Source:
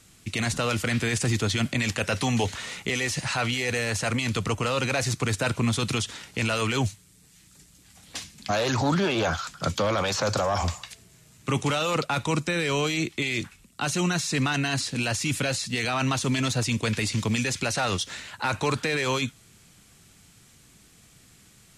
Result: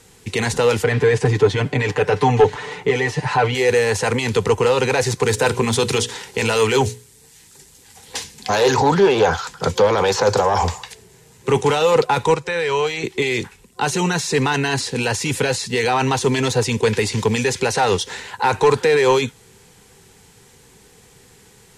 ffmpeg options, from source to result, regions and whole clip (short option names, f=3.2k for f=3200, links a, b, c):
-filter_complex "[0:a]asettb=1/sr,asplit=3[a][b][c];[a]atrim=end=0.844[d];[b]atrim=start=0.84:end=3.55,asetpts=PTS-STARTPTS,afade=t=in:d=0.004:c=qsin,afade=t=out:st=2.706:d=0.004:c=qsin,lowpass=f=1.7k:p=1,aecho=1:1:6.8:0.84,atrim=end_sample=119511[e];[c]atrim=start=3.546[f];[d][e]acrossfade=d=0.004:c1=hsin:c2=qsin[g];[g][f]acrossfade=d=0.004:c1=qsin:c2=hsin,asettb=1/sr,asplit=3[h][i][j];[h]atrim=end=5.224[k];[i]atrim=start=5.22:end=8.8,asetpts=PTS-STARTPTS,afade=t=in:d=0.004:c=qsin,afade=t=out:st=3.576:d=0.004:c=qsin,highshelf=f=3k:g=4.5,bandreject=f=60:t=h:w=6,bandreject=f=120:t=h:w=6,bandreject=f=180:t=h:w=6,bandreject=f=240:t=h:w=6,bandreject=f=300:t=h:w=6,bandreject=f=360:t=h:w=6,bandreject=f=420:t=h:w=6,bandreject=f=480:t=h:w=6,asoftclip=type=hard:threshold=-17dB[l];[j]atrim=start=8.796[m];[k][l]acrossfade=d=0.004:c1=hsin:c2=qsin[n];[n][m]acrossfade=d=0.004:c1=qsin:c2=hsin,asettb=1/sr,asplit=3[o][p][q];[o]atrim=end=12.344[r];[p]atrim=start=12.34:end=13.04,asetpts=PTS-STARTPTS,afade=t=in:d=0.004:c=qsin,afade=t=out:st=0.696:d=0.004:c=qsin,lowpass=f=3.4k:p=1,equalizer=f=250:t=o:w=1.7:g=-14[s];[q]atrim=start=13.036[t];[r][s]acrossfade=d=0.004:c1=hsin:c2=qsin[u];[u][t]acrossfade=d=0.004:c1=qsin:c2=hsin,superequalizer=7b=3.98:9b=2.82:11b=1.41,acontrast=86,volume=-2.5dB"